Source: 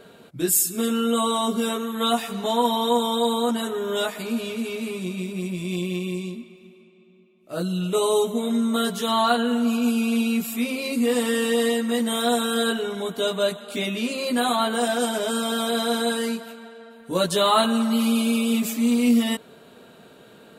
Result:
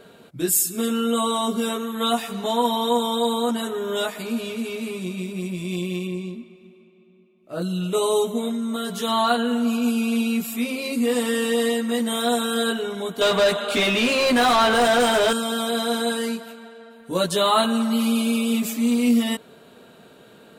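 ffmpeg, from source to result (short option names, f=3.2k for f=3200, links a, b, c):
-filter_complex "[0:a]asettb=1/sr,asplit=3[a][b][c];[a]atrim=end=6.074[d];[b]atrim=start=6.07:end=7.62,asetpts=PTS-STARTPTS,afade=t=in:d=0.004:c=qsin,afade=t=out:st=1.546:d=0.004:c=qsin,highshelf=f=3.5k:g=-8.5[e];[c]atrim=start=7.616[f];[d][e]acrossfade=d=0.004:c1=hsin:c2=qsin[g];[g][f]acrossfade=d=0.004:c1=qsin:c2=hsin,asettb=1/sr,asplit=3[h][i][j];[h]atrim=end=8.494[k];[i]atrim=start=8.49:end=8.97,asetpts=PTS-STARTPTS,afade=t=in:d=0.004:c=qsin,afade=t=out:st=0.476:d=0.004:c=qsin,acompressor=threshold=-23dB:ratio=6:attack=3.2:release=140:knee=1:detection=peak[l];[j]atrim=start=8.966[m];[k][l]acrossfade=d=0.004:c1=hsin:c2=qsin[n];[n][m]acrossfade=d=0.004:c1=qsin:c2=hsin,asettb=1/sr,asplit=3[o][p][q];[o]atrim=end=13.214[r];[p]atrim=start=13.21:end=15.33,asetpts=PTS-STARTPTS,afade=t=in:d=0.004:c=qsin,afade=t=out:st=2.116:d=0.004:c=qsin,asplit=2[s][t];[t]highpass=f=720:p=1,volume=23dB,asoftclip=type=tanh:threshold=-10dB[u];[s][u]amix=inputs=2:normalize=0,lowpass=f=2.8k:p=1,volume=-6dB[v];[q]atrim=start=15.326[w];[r][v]acrossfade=d=0.004:c1=hsin:c2=qsin[x];[x][w]acrossfade=d=0.004:c1=qsin:c2=hsin"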